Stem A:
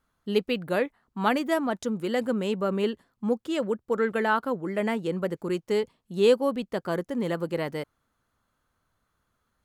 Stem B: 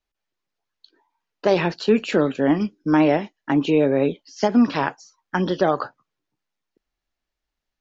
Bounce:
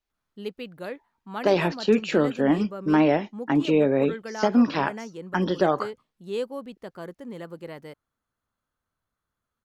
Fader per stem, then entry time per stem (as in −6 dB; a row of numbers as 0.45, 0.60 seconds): −9.5, −2.5 decibels; 0.10, 0.00 seconds